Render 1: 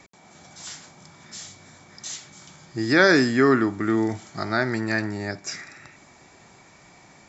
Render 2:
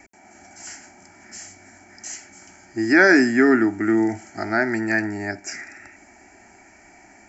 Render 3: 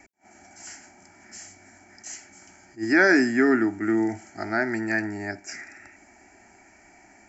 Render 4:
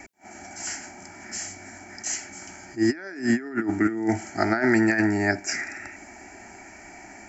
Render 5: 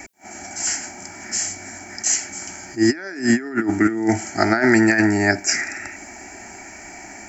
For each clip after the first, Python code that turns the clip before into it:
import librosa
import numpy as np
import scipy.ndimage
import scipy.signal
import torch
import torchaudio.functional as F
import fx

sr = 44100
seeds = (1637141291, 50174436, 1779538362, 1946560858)

y1 = fx.fixed_phaser(x, sr, hz=740.0, stages=8)
y1 = y1 * 10.0 ** (4.5 / 20.0)
y2 = fx.attack_slew(y1, sr, db_per_s=300.0)
y2 = y2 * 10.0 ** (-4.0 / 20.0)
y3 = fx.over_compress(y2, sr, threshold_db=-27.0, ratio=-0.5)
y3 = y3 * 10.0 ** (4.5 / 20.0)
y4 = fx.high_shelf(y3, sr, hz=4800.0, db=8.0)
y4 = y4 * 10.0 ** (5.0 / 20.0)